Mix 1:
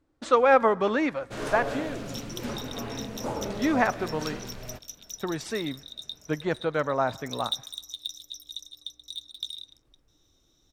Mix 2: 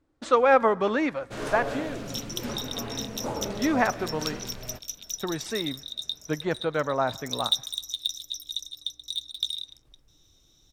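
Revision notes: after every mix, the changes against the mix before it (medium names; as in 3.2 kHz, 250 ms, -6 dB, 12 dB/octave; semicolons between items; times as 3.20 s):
second sound +6.0 dB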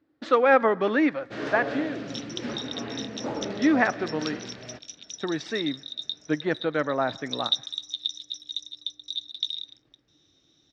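master: add cabinet simulation 130–5100 Hz, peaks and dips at 300 Hz +6 dB, 980 Hz -4 dB, 1.8 kHz +5 dB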